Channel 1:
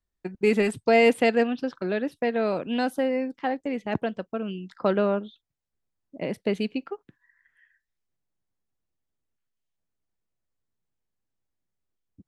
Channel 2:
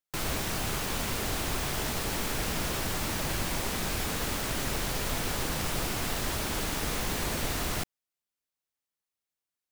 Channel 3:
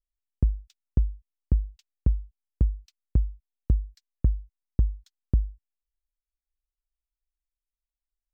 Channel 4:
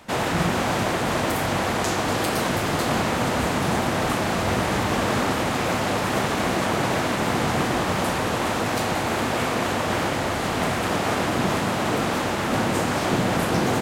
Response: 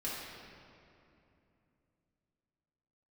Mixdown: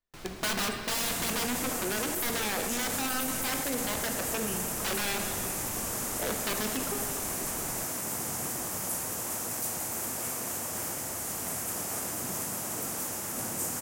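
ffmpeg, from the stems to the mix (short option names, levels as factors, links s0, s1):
-filter_complex "[0:a]bass=f=250:g=-10,treble=f=4000:g=-4,aeval=exprs='(mod(15*val(0)+1,2)-1)/15':c=same,volume=0.708,asplit=2[s0][s1];[s1]volume=0.596[s2];[1:a]highshelf=f=9800:g=-8.5,volume=0.211[s3];[3:a]highshelf=f=9400:g=9.5,aexciter=amount=3.2:drive=10:freq=5500,adelay=850,volume=0.15[s4];[4:a]atrim=start_sample=2205[s5];[s2][s5]afir=irnorm=-1:irlink=0[s6];[s0][s3][s4][s6]amix=inputs=4:normalize=0,alimiter=limit=0.0794:level=0:latency=1:release=16"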